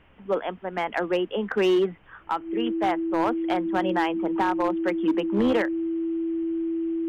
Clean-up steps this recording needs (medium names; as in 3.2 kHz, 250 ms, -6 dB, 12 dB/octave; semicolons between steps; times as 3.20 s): clip repair -16.5 dBFS; band-stop 330 Hz, Q 30; expander -36 dBFS, range -21 dB